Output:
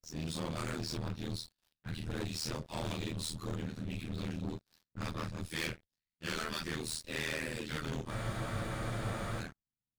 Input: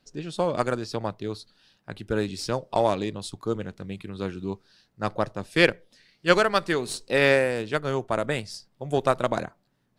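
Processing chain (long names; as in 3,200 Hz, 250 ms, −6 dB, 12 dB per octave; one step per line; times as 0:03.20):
random phases in long frames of 100 ms
guitar amp tone stack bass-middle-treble 6-0-2
speech leveller within 3 dB 0.5 s
leveller curve on the samples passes 5
amplitude modulation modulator 79 Hz, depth 90%
frozen spectrum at 0:08.13, 1.27 s
one half of a high-frequency compander decoder only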